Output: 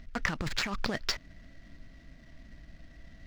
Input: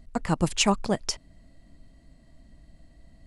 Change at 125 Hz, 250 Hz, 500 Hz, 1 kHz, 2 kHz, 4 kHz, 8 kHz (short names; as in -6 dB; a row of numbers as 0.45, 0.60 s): -9.5, -11.0, -11.0, -9.0, +1.5, -5.0, -12.5 dB